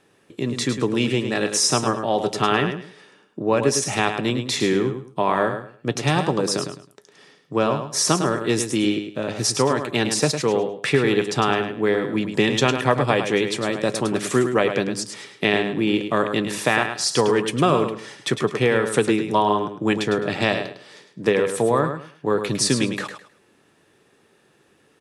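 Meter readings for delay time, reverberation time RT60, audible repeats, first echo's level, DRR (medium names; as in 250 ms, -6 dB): 105 ms, no reverb, 3, -8.0 dB, no reverb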